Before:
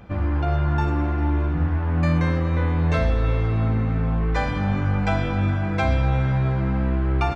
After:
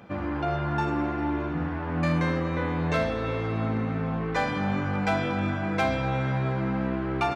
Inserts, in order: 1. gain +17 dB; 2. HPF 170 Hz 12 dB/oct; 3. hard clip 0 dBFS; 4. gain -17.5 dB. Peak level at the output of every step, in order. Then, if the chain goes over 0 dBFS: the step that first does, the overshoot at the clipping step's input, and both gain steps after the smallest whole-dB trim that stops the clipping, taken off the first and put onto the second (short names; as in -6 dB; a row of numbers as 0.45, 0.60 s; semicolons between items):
+9.0, +6.0, 0.0, -17.5 dBFS; step 1, 6.0 dB; step 1 +11 dB, step 4 -11.5 dB